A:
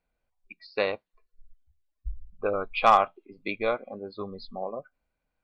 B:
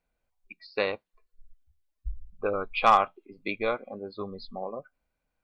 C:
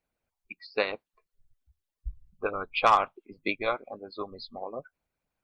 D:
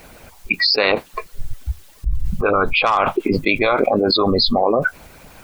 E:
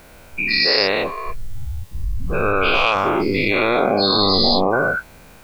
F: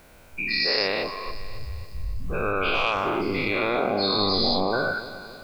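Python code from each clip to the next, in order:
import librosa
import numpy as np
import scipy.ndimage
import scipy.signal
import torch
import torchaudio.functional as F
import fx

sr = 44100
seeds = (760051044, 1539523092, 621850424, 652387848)

y1 = fx.dynamic_eq(x, sr, hz=650.0, q=3.4, threshold_db=-38.0, ratio=4.0, max_db=-4)
y2 = fx.hpss(y1, sr, part='harmonic', gain_db=-18)
y2 = y2 * 10.0 ** (3.5 / 20.0)
y3 = fx.env_flatten(y2, sr, amount_pct=100)
y3 = y3 * 10.0 ** (1.5 / 20.0)
y4 = fx.spec_dilate(y3, sr, span_ms=240)
y4 = y4 * 10.0 ** (-8.0 / 20.0)
y5 = fx.echo_feedback(y4, sr, ms=276, feedback_pct=53, wet_db=-14.5)
y5 = y5 * 10.0 ** (-7.0 / 20.0)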